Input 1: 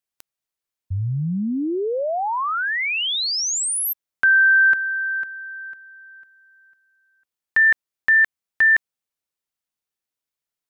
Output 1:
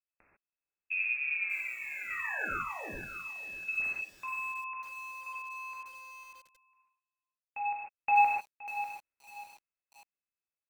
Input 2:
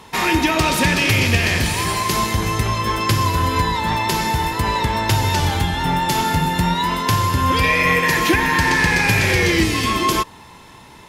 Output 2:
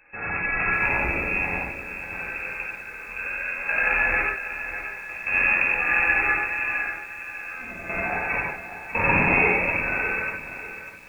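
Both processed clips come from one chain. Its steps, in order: half-wave rectifier; random-step tremolo 1.9 Hz, depth 95%; gated-style reverb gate 170 ms flat, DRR -5.5 dB; frequency inversion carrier 2.6 kHz; bit-crushed delay 595 ms, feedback 35%, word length 7-bit, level -11 dB; trim -4 dB

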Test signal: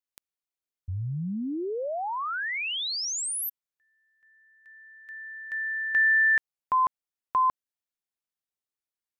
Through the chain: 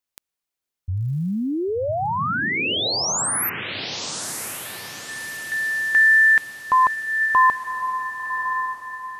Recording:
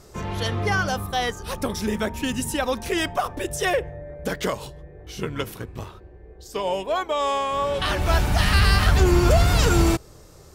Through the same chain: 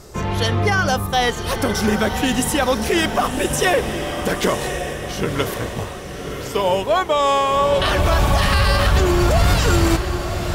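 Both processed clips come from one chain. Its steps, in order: peak limiter -15 dBFS; echo that smears into a reverb 1081 ms, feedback 44%, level -7 dB; trim +7 dB

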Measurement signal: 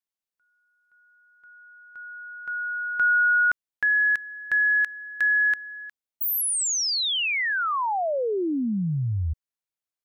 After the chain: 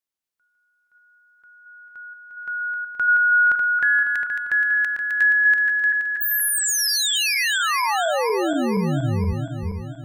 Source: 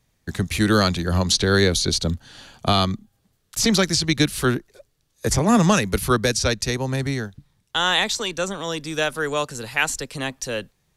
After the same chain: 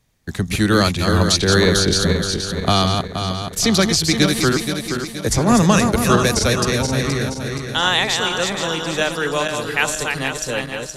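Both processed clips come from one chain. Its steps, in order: backward echo that repeats 237 ms, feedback 69%, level -5 dB; trim +2 dB

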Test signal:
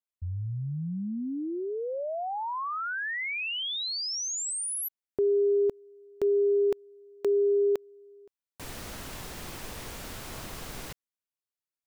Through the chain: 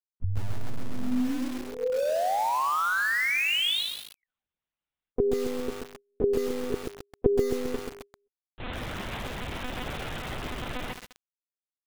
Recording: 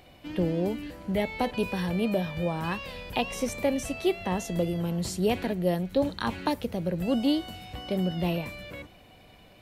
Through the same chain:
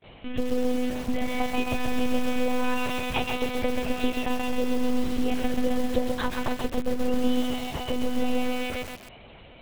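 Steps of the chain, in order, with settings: gate with hold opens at -44 dBFS, closes at -48 dBFS, hold 193 ms, range -28 dB; compression 10:1, threshold -29 dBFS; monotone LPC vocoder at 8 kHz 250 Hz; bit-crushed delay 132 ms, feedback 55%, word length 7-bit, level -4 dB; trim +6 dB

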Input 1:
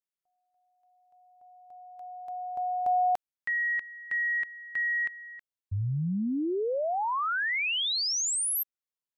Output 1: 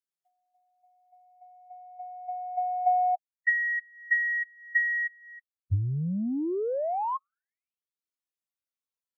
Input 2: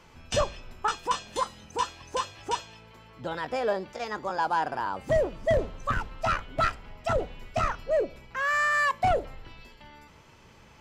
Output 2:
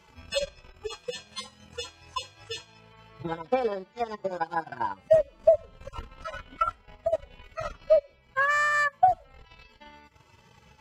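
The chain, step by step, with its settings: harmonic-percussive separation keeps harmonic; transient shaper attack +9 dB, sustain -10 dB; high-pass 44 Hz

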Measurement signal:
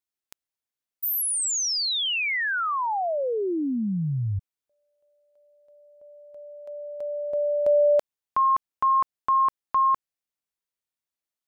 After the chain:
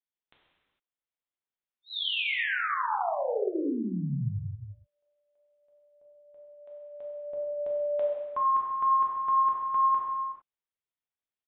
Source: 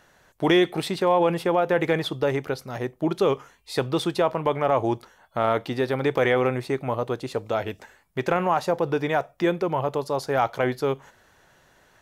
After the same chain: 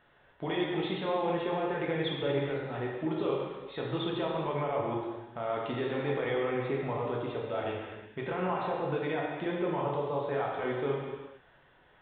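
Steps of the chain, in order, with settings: resampled via 8 kHz; peak limiter -18 dBFS; gated-style reverb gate 480 ms falling, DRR -3.5 dB; trim -8.5 dB

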